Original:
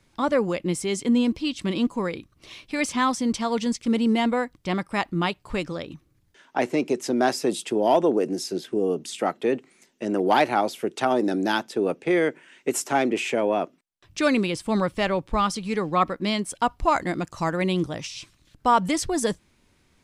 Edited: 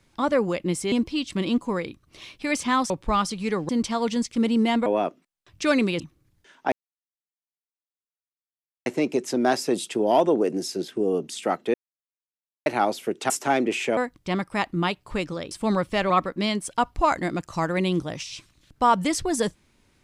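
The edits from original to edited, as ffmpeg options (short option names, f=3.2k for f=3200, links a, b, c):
-filter_complex "[0:a]asplit=13[a][b][c][d][e][f][g][h][i][j][k][l][m];[a]atrim=end=0.922[n];[b]atrim=start=1.208:end=3.192[o];[c]atrim=start=15.148:end=15.942[p];[d]atrim=start=3.188:end=4.362[q];[e]atrim=start=13.418:end=14.562[r];[f]atrim=start=5.898:end=6.62,asetpts=PTS-STARTPTS,afade=t=out:st=0.718:d=0.004:c=hsin,apad=pad_dur=2.14[s];[g]atrim=start=6.62:end=9.5,asetpts=PTS-STARTPTS,afade=t=in:d=0.004:c=hsin,afade=t=out:st=2.876:d=0.004:c=hsin[t];[h]atrim=start=9.5:end=10.42,asetpts=PTS-STARTPTS,volume=0[u];[i]atrim=start=10.42:end=11.062,asetpts=PTS-STARTPTS,afade=t=in:d=0.004:c=hsin[v];[j]atrim=start=12.748:end=13.422[w];[k]atrim=start=4.358:end=5.902[x];[l]atrim=start=14.558:end=15.152[y];[m]atrim=start=15.938[z];[n][o]acrossfade=d=0.004:c1=hsin:c2=hsin[aa];[aa][p]acrossfade=d=0.004:c1=hsin:c2=hsin[ab];[ab][q]acrossfade=d=0.004:c1=hsin:c2=hsin[ac];[ac][r]acrossfade=d=0.004:c1=hsin:c2=hsin[ad];[s][t][u][v]concat=n=4:v=0:a=1[ae];[ad][ae]acrossfade=d=0.004:c1=hsin:c2=hsin[af];[af][w]acrossfade=d=0.004:c1=hsin:c2=hsin[ag];[ag][x]acrossfade=d=0.004:c1=hsin:c2=hsin[ah];[ah][y]acrossfade=d=0.004:c1=hsin:c2=hsin[ai];[ai][z]acrossfade=d=0.004:c1=hsin:c2=hsin"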